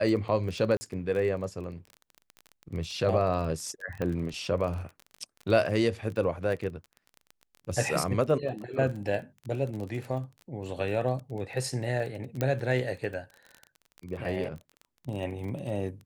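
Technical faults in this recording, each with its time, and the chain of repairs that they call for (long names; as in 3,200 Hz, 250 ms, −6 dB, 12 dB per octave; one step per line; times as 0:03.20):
surface crackle 24 per second −35 dBFS
0:00.77–0:00.81: drop-out 40 ms
0:04.02: click −20 dBFS
0:12.41: click −15 dBFS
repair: click removal
repair the gap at 0:00.77, 40 ms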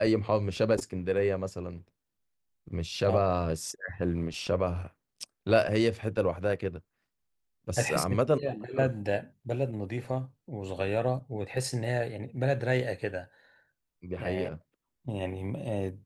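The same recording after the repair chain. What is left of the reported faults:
none of them is left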